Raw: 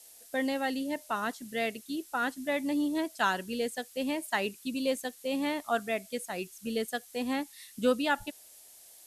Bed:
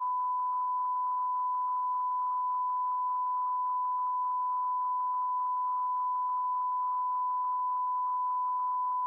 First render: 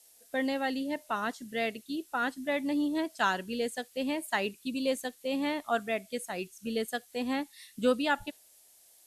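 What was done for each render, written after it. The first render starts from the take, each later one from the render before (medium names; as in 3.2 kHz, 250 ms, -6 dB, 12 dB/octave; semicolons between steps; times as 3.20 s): noise print and reduce 6 dB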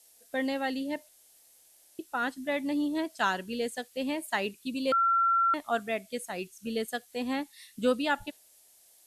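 1.09–1.99 s: room tone; 4.92–5.54 s: bleep 1.36 kHz -21.5 dBFS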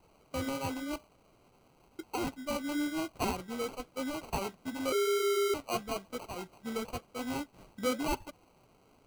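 sample-and-hold 25×; flange 0.96 Hz, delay 0.9 ms, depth 10 ms, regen -60%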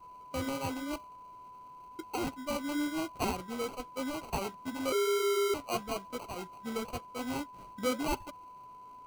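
add bed -20 dB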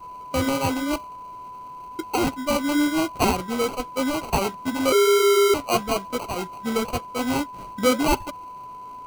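trim +12 dB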